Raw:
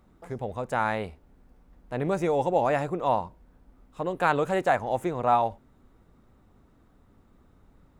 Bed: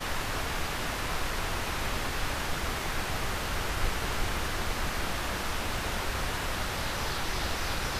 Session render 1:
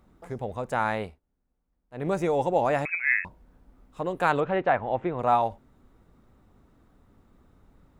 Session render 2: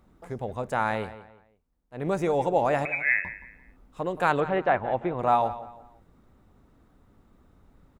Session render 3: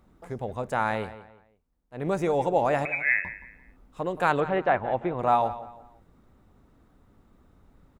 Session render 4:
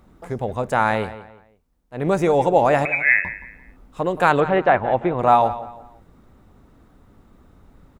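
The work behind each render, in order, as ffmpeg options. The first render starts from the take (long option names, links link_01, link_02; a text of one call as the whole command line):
ffmpeg -i in.wav -filter_complex "[0:a]asettb=1/sr,asplit=3[link_01][link_02][link_03];[link_01]atrim=end=2.854[link_04];[link_02]atrim=start=2.85:end=3.25,asetpts=PTS-STARTPTS,afade=type=in:duration=0.004:curve=qsin,afade=type=out:start_time=0.396:duration=0.004:curve=qsin,lowpass=frequency=2300:width_type=q:width=0.5098,lowpass=frequency=2300:width_type=q:width=0.6013,lowpass=frequency=2300:width_type=q:width=0.9,lowpass=frequency=2300:width_type=q:width=2.563,afreqshift=-2700[link_05];[link_03]atrim=start=3.246[link_06];[link_04][link_05]acrossfade=duration=0.004:curve1=hsin:curve2=qsin[link_07];[link_07][link_06]acrossfade=duration=0.004:curve1=qsin:curve2=hsin,asettb=1/sr,asplit=3[link_08][link_09][link_10];[link_08]atrim=end=4.404[link_11];[link_09]atrim=start=4.4:end=5.19,asetpts=PTS-STARTPTS,afade=type=in:duration=0.004:curve=qsin,afade=type=out:start_time=0.786:duration=0.004:curve=qsin,lowpass=frequency=3200:width=0.5412,lowpass=frequency=3200:width=1.3066[link_12];[link_10]atrim=start=5.186[link_13];[link_11][link_12]acrossfade=duration=0.004:curve1=hsin:curve2=qsin[link_14];[link_14][link_13]acrossfade=duration=0.004:curve1=qsin:curve2=hsin,asplit=3[link_15][link_16][link_17];[link_15]atrim=end=1.2,asetpts=PTS-STARTPTS,afade=type=out:start_time=1.03:duration=0.17:silence=0.0891251[link_18];[link_16]atrim=start=1.2:end=1.91,asetpts=PTS-STARTPTS,volume=-21dB[link_19];[link_17]atrim=start=1.91,asetpts=PTS-STARTPTS,afade=type=in:duration=0.17:silence=0.0891251[link_20];[link_18][link_19][link_20]concat=n=3:v=0:a=1" out.wav
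ffmpeg -i in.wav -filter_complex "[0:a]asplit=2[link_01][link_02];[link_02]adelay=173,lowpass=frequency=4200:poles=1,volume=-14.5dB,asplit=2[link_03][link_04];[link_04]adelay=173,lowpass=frequency=4200:poles=1,volume=0.33,asplit=2[link_05][link_06];[link_06]adelay=173,lowpass=frequency=4200:poles=1,volume=0.33[link_07];[link_01][link_03][link_05][link_07]amix=inputs=4:normalize=0" out.wav
ffmpeg -i in.wav -af anull out.wav
ffmpeg -i in.wav -af "volume=7.5dB,alimiter=limit=-3dB:level=0:latency=1" out.wav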